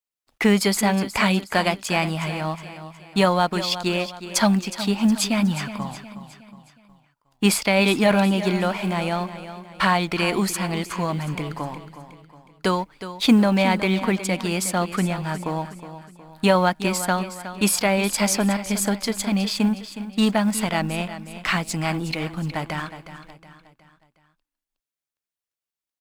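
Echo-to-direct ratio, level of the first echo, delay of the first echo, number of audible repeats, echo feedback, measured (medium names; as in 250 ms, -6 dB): -11.5 dB, -12.5 dB, 365 ms, 4, 44%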